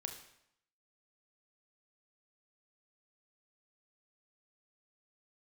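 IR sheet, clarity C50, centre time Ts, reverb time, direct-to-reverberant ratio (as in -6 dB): 8.0 dB, 20 ms, 0.75 s, 4.5 dB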